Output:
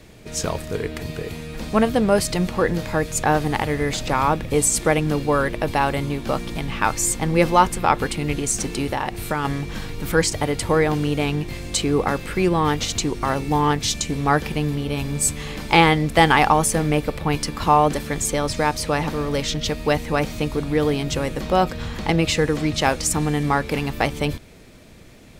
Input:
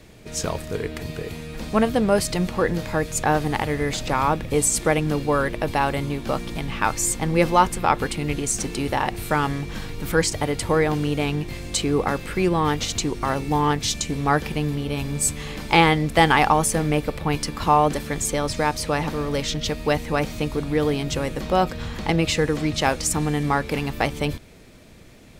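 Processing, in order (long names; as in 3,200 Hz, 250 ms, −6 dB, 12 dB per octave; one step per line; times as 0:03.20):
0:08.84–0:09.45: downward compressor 2.5 to 1, threshold −23 dBFS, peak gain reduction 5.5 dB
level +1.5 dB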